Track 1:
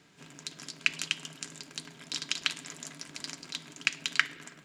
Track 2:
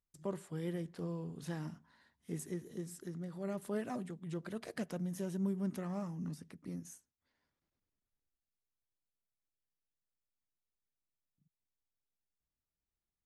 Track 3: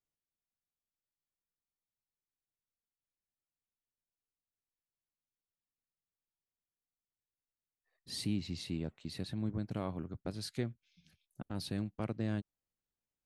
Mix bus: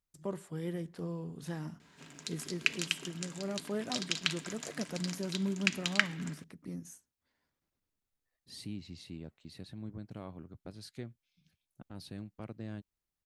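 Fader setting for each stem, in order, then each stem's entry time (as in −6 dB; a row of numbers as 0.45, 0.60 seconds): −2.0, +1.5, −7.0 decibels; 1.80, 0.00, 0.40 seconds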